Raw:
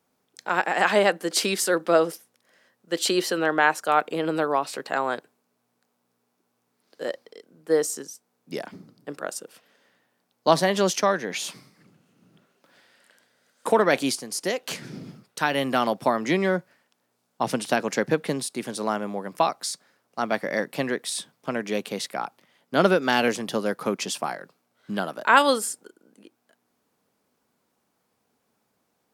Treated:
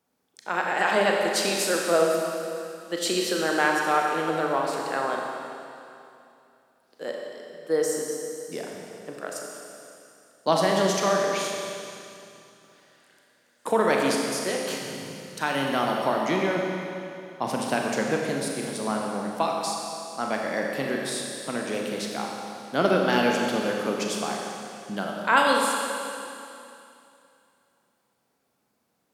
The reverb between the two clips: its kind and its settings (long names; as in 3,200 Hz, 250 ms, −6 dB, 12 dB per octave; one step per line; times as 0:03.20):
four-comb reverb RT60 2.7 s, combs from 29 ms, DRR −0.5 dB
level −4 dB